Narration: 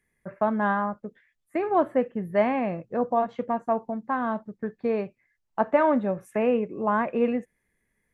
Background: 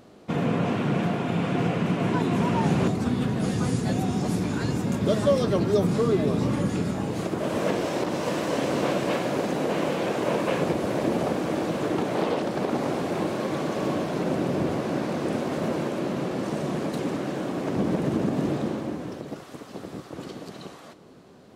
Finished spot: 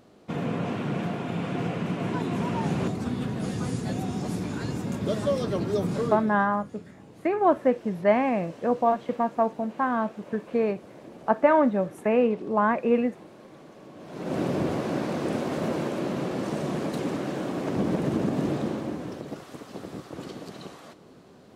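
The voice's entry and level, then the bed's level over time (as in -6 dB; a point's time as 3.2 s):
5.70 s, +1.5 dB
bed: 6.06 s -4.5 dB
6.45 s -20.5 dB
13.93 s -20.5 dB
14.38 s -1 dB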